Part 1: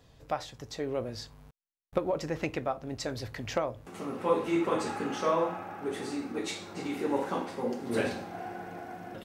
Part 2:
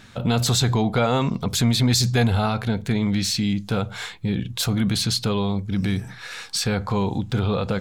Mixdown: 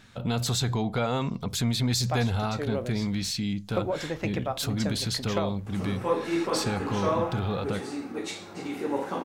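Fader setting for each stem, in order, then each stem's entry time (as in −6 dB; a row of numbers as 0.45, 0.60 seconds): +0.5, −7.0 decibels; 1.80, 0.00 seconds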